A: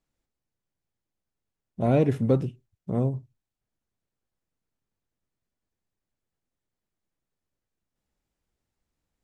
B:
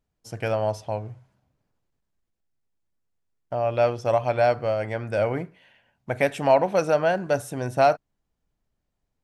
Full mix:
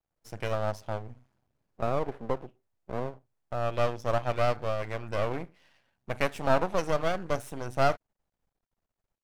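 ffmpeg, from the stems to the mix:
-filter_complex "[0:a]acrossover=split=360 2200:gain=0.126 1 0.0794[a][b][c];[a][b][c]amix=inputs=3:normalize=0,acompressor=threshold=-28dB:ratio=2.5,equalizer=f=660:w=0.95:g=7.5,volume=-1dB[d];[1:a]volume=-2.5dB[e];[d][e]amix=inputs=2:normalize=0,aeval=exprs='max(val(0),0)':c=same"

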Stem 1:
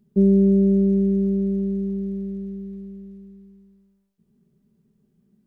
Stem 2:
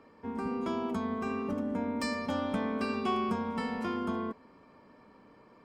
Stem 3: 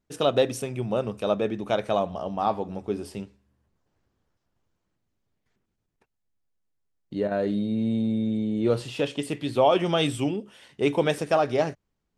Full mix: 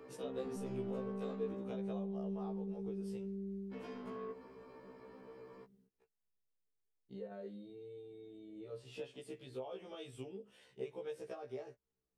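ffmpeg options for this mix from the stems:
-filter_complex "[0:a]asoftclip=type=tanh:threshold=-20.5dB,adelay=400,volume=-5.5dB[a];[1:a]asoftclip=type=tanh:threshold=-33.5dB,volume=1dB,asplit=3[b][c][d];[b]atrim=end=1.75,asetpts=PTS-STARTPTS,afade=t=out:st=1.746:d=0.004:c=hsin[e];[c]atrim=start=1.75:end=3.73,asetpts=PTS-STARTPTS,volume=0[f];[d]atrim=start=3.73,asetpts=PTS-STARTPTS,afade=t=in:d=0.004:c=hsin[g];[e][f][g]concat=n=3:v=0:a=1[h];[2:a]alimiter=limit=-13.5dB:level=0:latency=1:release=399,acompressor=threshold=-34dB:ratio=6,volume=-11dB,asplit=2[i][j];[j]apad=whole_len=258821[k];[a][k]sidechaincompress=threshold=-52dB:ratio=8:attack=16:release=140[l];[l][h]amix=inputs=2:normalize=0,alimiter=level_in=17dB:limit=-24dB:level=0:latency=1:release=47,volume=-17dB,volume=0dB[m];[i][m]amix=inputs=2:normalize=0,equalizer=f=440:t=o:w=0.32:g=12,afftfilt=real='re*1.73*eq(mod(b,3),0)':imag='im*1.73*eq(mod(b,3),0)':win_size=2048:overlap=0.75"

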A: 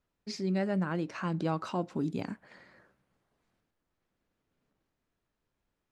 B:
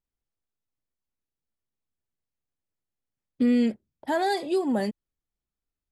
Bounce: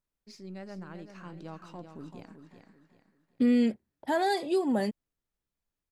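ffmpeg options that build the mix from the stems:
-filter_complex "[0:a]aeval=exprs='if(lt(val(0),0),0.708*val(0),val(0))':c=same,highshelf=f=6.9k:g=6,volume=-11.5dB,asplit=2[a][b];[b]volume=-8.5dB[c];[1:a]volume=-2dB[d];[c]aecho=0:1:386|772|1158|1544|1930:1|0.33|0.109|0.0359|0.0119[e];[a][d][e]amix=inputs=3:normalize=0"

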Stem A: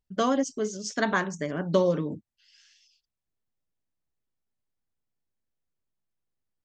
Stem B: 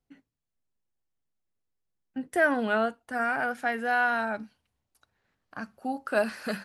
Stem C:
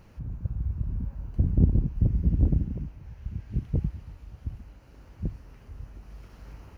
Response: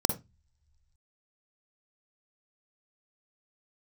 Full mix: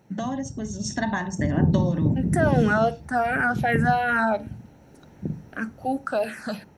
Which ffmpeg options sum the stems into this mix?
-filter_complex "[0:a]acompressor=threshold=-36dB:ratio=4,aecho=1:1:1.1:0.74,volume=2.5dB,asplit=2[a][b];[b]volume=-14dB[c];[1:a]alimiter=limit=-21dB:level=0:latency=1:release=30,asplit=2[d][e];[e]afreqshift=-2.7[f];[d][f]amix=inputs=2:normalize=1,volume=2.5dB,asplit=2[g][h];[h]volume=-21.5dB[i];[2:a]highpass=130,volume=-7dB,asplit=2[j][k];[k]volume=-9.5dB[l];[3:a]atrim=start_sample=2205[m];[c][i][l]amix=inputs=3:normalize=0[n];[n][m]afir=irnorm=-1:irlink=0[o];[a][g][j][o]amix=inputs=4:normalize=0,dynaudnorm=f=490:g=5:m=6dB"

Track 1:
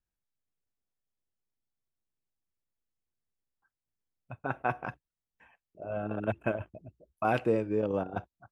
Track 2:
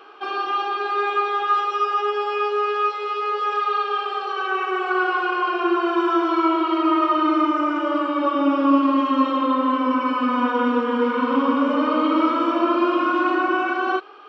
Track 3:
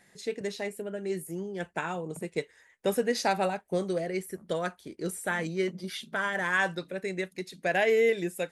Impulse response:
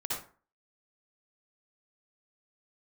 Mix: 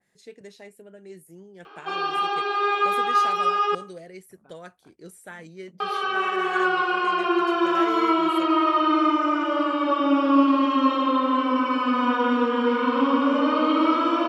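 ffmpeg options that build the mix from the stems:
-filter_complex "[0:a]acompressor=threshold=-33dB:ratio=6,volume=-13.5dB[a];[1:a]adelay=1650,volume=-2dB,asplit=3[b][c][d];[b]atrim=end=3.75,asetpts=PTS-STARTPTS,afade=t=out:st=3.746:d=0.004:c=hsin[e];[c]atrim=start=3.75:end=5.8,asetpts=PTS-STARTPTS,volume=0[f];[d]atrim=start=5.8,asetpts=PTS-STARTPTS,afade=t=in:d=0.004:c=hsin[g];[e][f][g]concat=n=3:v=0:a=1,asplit=2[h][i];[i]volume=-20dB[j];[2:a]volume=-10.5dB,asplit=2[k][l];[l]apad=whole_len=375293[m];[a][m]sidechaincompress=threshold=-54dB:ratio=8:attack=7.4:release=295[n];[3:a]atrim=start_sample=2205[o];[j][o]afir=irnorm=-1:irlink=0[p];[n][h][k][p]amix=inputs=4:normalize=0,adynamicequalizer=threshold=0.0141:dfrequency=2300:dqfactor=0.7:tfrequency=2300:tqfactor=0.7:attack=5:release=100:ratio=0.375:range=2:mode=boostabove:tftype=highshelf"

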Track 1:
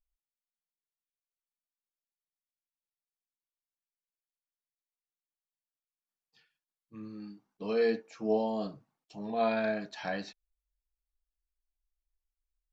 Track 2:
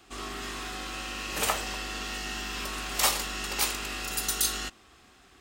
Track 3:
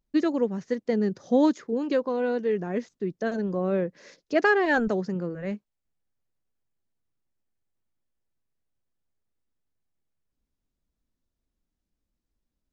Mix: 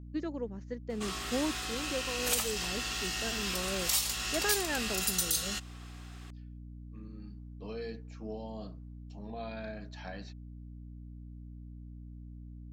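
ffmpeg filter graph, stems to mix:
-filter_complex "[0:a]volume=-6.5dB[a];[1:a]lowshelf=f=350:g=-9.5,adelay=900,volume=3dB[b];[2:a]volume=-12.5dB[c];[a][b]amix=inputs=2:normalize=0,acrossover=split=170|3000[d][e][f];[e]acompressor=threshold=-41dB:ratio=3[g];[d][g][f]amix=inputs=3:normalize=0,alimiter=limit=-16.5dB:level=0:latency=1:release=284,volume=0dB[h];[c][h]amix=inputs=2:normalize=0,aeval=exprs='val(0)+0.00562*(sin(2*PI*60*n/s)+sin(2*PI*2*60*n/s)/2+sin(2*PI*3*60*n/s)/3+sin(2*PI*4*60*n/s)/4+sin(2*PI*5*60*n/s)/5)':c=same"

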